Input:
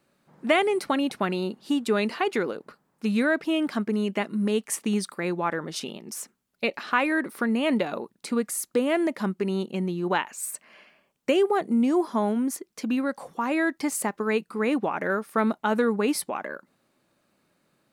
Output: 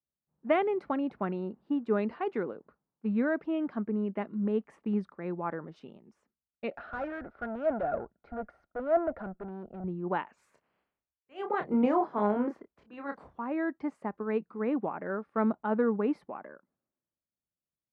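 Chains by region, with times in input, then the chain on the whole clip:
6.71–9.84 s: Savitzky-Golay filter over 15 samples + valve stage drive 31 dB, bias 0.45 + small resonant body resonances 670/1400 Hz, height 17 dB, ringing for 20 ms
10.36–13.37 s: spectral peaks clipped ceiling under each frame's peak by 17 dB + slow attack 254 ms + doubling 29 ms -6.5 dB
whole clip: low-pass 1.3 kHz 12 dB/octave; peaking EQ 63 Hz +13.5 dB 1.2 oct; three bands expanded up and down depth 70%; trim -6 dB

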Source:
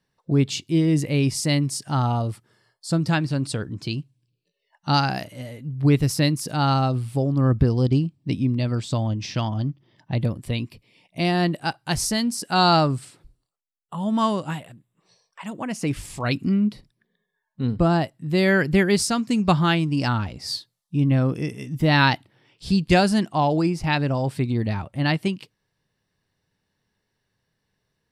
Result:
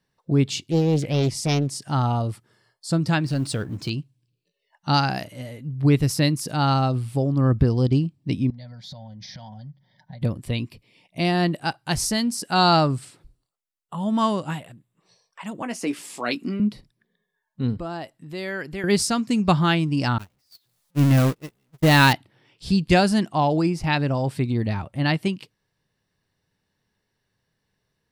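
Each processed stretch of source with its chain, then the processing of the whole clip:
0.66–1.82 s: treble shelf 4.8 kHz -4 dB + loudspeaker Doppler distortion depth 0.58 ms
3.26–3.90 s: companding laws mixed up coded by mu + overload inside the chain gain 16.5 dB
8.50–10.22 s: comb 5.4 ms, depth 49% + compression 12:1, threshold -33 dBFS + static phaser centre 1.8 kHz, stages 8
15.62–16.60 s: high-pass 240 Hz 24 dB/octave + doubling 17 ms -9.5 dB
17.77–18.84 s: compression 2:1, threshold -31 dBFS + peaking EQ 120 Hz -10 dB 1.9 oct
20.18–22.13 s: jump at every zero crossing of -19.5 dBFS + gate -18 dBFS, range -46 dB + treble shelf 11 kHz +5 dB
whole clip: none

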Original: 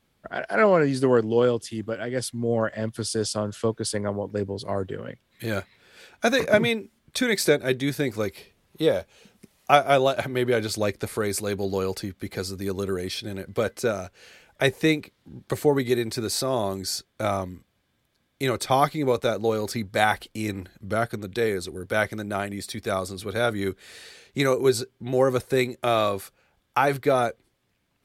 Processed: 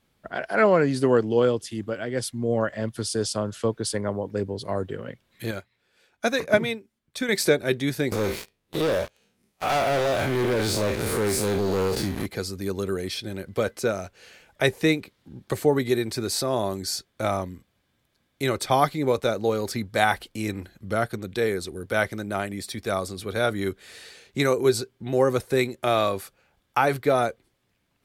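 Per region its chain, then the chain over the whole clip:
5.51–7.29 s: hum notches 60/120 Hz + de-esser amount 35% + upward expansion, over -41 dBFS
8.12–12.26 s: spectral blur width 99 ms + waveshaping leveller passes 5 + compression 4:1, threshold -24 dBFS
whole clip: none

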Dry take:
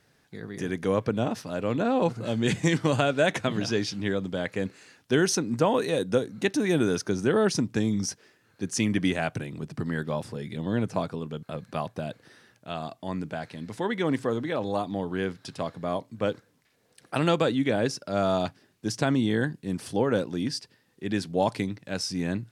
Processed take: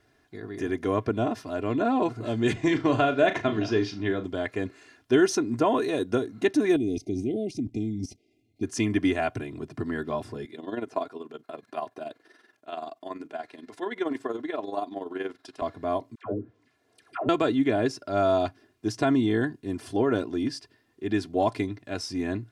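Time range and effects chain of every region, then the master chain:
2.53–4.24 s: low-pass 5.3 kHz + flutter echo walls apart 6.3 m, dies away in 0.22 s
6.76–8.63 s: brick-wall FIR band-stop 790–2000 Hz + resonant low shelf 360 Hz +7 dB, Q 1.5 + level held to a coarse grid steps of 14 dB
10.45–15.62 s: high-pass 300 Hz + AM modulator 21 Hz, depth 50%
16.15–17.29 s: high-pass 77 Hz + low-pass that closes with the level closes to 450 Hz, closed at -25.5 dBFS + phase dispersion lows, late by 109 ms, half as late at 660 Hz
whole clip: treble shelf 2.8 kHz -8.5 dB; comb 2.9 ms, depth 76%

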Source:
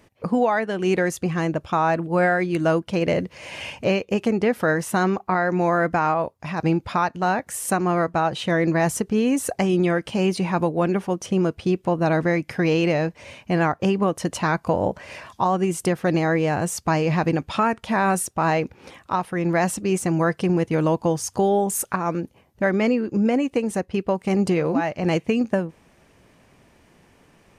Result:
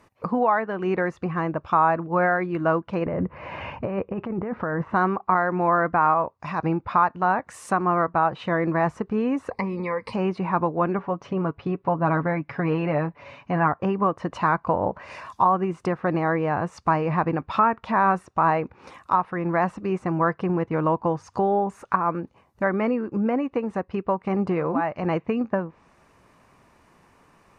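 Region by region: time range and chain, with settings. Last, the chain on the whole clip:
3.06–4.94 s: low-pass 1.8 kHz + bass shelf 200 Hz +7.5 dB + compressor with a negative ratio -23 dBFS
9.50–10.13 s: rippled EQ curve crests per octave 0.92, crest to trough 17 dB + compression 2:1, threshold -24 dBFS
10.98–13.73 s: distance through air 150 m + comb 7.1 ms, depth 52%
whole clip: low-pass that closes with the level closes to 2.1 kHz, closed at -20.5 dBFS; peaking EQ 1.1 kHz +10 dB 0.79 oct; band-stop 3.2 kHz, Q 11; trim -4 dB

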